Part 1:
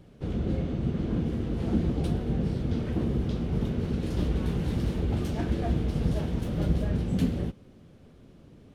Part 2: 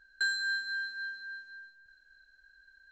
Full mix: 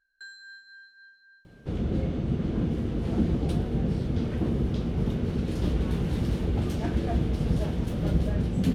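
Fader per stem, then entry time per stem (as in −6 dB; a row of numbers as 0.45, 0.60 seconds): +1.0, −14.5 decibels; 1.45, 0.00 seconds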